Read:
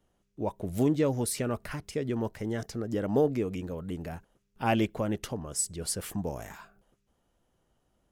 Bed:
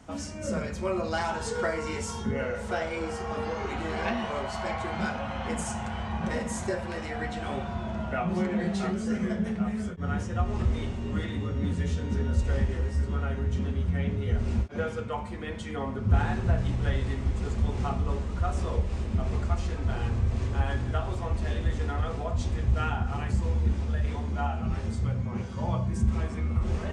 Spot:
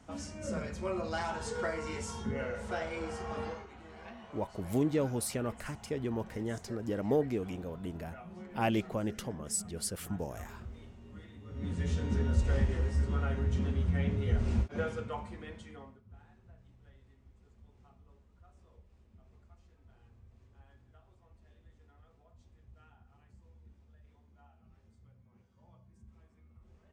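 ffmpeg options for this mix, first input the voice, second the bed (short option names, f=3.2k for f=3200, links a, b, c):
-filter_complex "[0:a]adelay=3950,volume=-4dB[a];[1:a]volume=11dB,afade=t=out:st=3.45:d=0.21:silence=0.211349,afade=t=in:st=11.44:d=0.53:silence=0.141254,afade=t=out:st=14.65:d=1.37:silence=0.0316228[b];[a][b]amix=inputs=2:normalize=0"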